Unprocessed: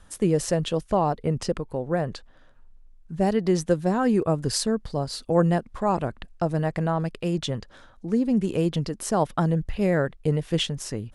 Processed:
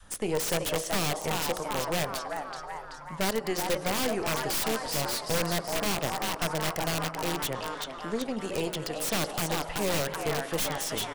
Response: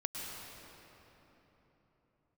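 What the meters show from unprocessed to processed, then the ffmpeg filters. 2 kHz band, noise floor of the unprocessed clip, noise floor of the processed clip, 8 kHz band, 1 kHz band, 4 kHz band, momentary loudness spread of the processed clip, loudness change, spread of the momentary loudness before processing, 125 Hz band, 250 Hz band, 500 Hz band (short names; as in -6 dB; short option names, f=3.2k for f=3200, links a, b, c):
+4.0 dB, -53 dBFS, -42 dBFS, +3.5 dB, -2.5 dB, +2.5 dB, 6 LU, -4.5 dB, 8 LU, -10.5 dB, -10.0 dB, -5.5 dB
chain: -filter_complex "[0:a]lowshelf=f=120:g=-4,bandreject=f=60:t=h:w=6,bandreject=f=120:t=h:w=6,bandreject=f=180:t=h:w=6,bandreject=f=240:t=h:w=6,bandreject=f=300:t=h:w=6,bandreject=f=360:t=h:w=6,bandreject=f=420:t=h:w=6,bandreject=f=480:t=h:w=6,bandreject=f=540:t=h:w=6,adynamicequalizer=threshold=0.0158:dfrequency=280:dqfactor=0.73:tfrequency=280:tqfactor=0.73:attack=5:release=100:ratio=0.375:range=1.5:mode=cutabove:tftype=bell,acrossover=split=490|3000[a][b][c];[a]acompressor=threshold=-51dB:ratio=2[d];[d][b][c]amix=inputs=3:normalize=0,asplit=8[e][f][g][h][i][j][k][l];[f]adelay=380,afreqshift=130,volume=-7.5dB[m];[g]adelay=760,afreqshift=260,volume=-12.2dB[n];[h]adelay=1140,afreqshift=390,volume=-17dB[o];[i]adelay=1520,afreqshift=520,volume=-21.7dB[p];[j]adelay=1900,afreqshift=650,volume=-26.4dB[q];[k]adelay=2280,afreqshift=780,volume=-31.2dB[r];[l]adelay=2660,afreqshift=910,volume=-35.9dB[s];[e][m][n][o][p][q][r][s]amix=inputs=8:normalize=0,asplit=2[t][u];[1:a]atrim=start_sample=2205[v];[u][v]afir=irnorm=-1:irlink=0,volume=-14.5dB[w];[t][w]amix=inputs=2:normalize=0,aeval=exprs='(tanh(17.8*val(0)+0.6)-tanh(0.6))/17.8':c=same,acrossover=split=480[x][y];[y]aeval=exprs='(mod(28.2*val(0)+1,2)-1)/28.2':c=same[z];[x][z]amix=inputs=2:normalize=0,volume=4.5dB"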